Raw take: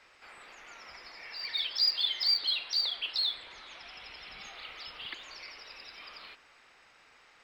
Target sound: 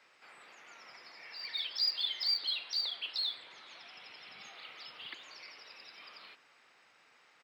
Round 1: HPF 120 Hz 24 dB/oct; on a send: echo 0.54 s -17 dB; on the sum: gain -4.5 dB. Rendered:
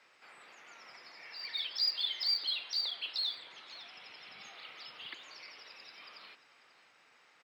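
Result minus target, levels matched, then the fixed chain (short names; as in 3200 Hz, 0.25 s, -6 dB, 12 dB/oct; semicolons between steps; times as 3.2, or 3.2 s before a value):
echo-to-direct +10 dB
HPF 120 Hz 24 dB/oct; on a send: echo 0.54 s -27 dB; on the sum: gain -4.5 dB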